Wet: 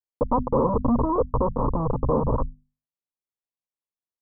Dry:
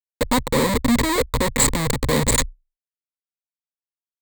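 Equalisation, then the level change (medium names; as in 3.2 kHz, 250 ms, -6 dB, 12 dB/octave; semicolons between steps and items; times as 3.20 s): steep low-pass 1.2 kHz 72 dB/octave; hum notches 50/100/150/200/250 Hz; dynamic bell 240 Hz, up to -3 dB, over -32 dBFS, Q 1.1; 0.0 dB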